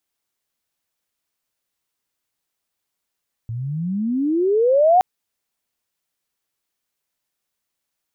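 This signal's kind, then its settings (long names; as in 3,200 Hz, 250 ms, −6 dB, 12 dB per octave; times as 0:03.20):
glide logarithmic 110 Hz → 760 Hz −24.5 dBFS → −9.5 dBFS 1.52 s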